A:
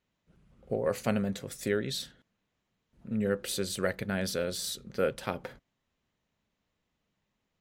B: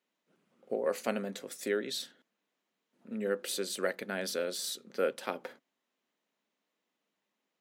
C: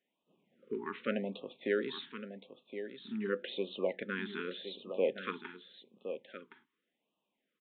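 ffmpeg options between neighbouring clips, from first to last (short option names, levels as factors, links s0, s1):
-af "highpass=f=240:w=0.5412,highpass=f=240:w=1.3066,volume=0.841"
-filter_complex "[0:a]asplit=2[s0][s1];[s1]aecho=0:1:1067:0.335[s2];[s0][s2]amix=inputs=2:normalize=0,aresample=8000,aresample=44100,afftfilt=real='re*(1-between(b*sr/1024,570*pow(1800/570,0.5+0.5*sin(2*PI*0.87*pts/sr))/1.41,570*pow(1800/570,0.5+0.5*sin(2*PI*0.87*pts/sr))*1.41))':imag='im*(1-between(b*sr/1024,570*pow(1800/570,0.5+0.5*sin(2*PI*0.87*pts/sr))/1.41,570*pow(1800/570,0.5+0.5*sin(2*PI*0.87*pts/sr))*1.41))':win_size=1024:overlap=0.75"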